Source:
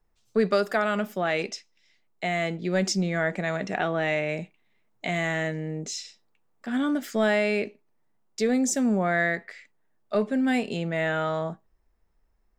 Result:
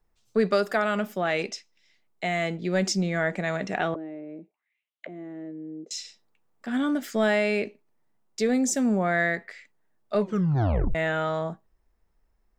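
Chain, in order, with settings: 3.94–5.91 auto-wah 320–3600 Hz, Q 4.8, down, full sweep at -28.5 dBFS; 10.19 tape stop 0.76 s

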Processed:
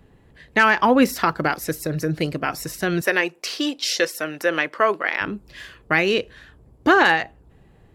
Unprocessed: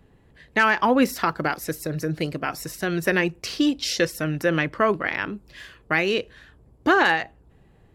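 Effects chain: 3.01–5.21 HPF 430 Hz 12 dB/oct; gain +3 dB

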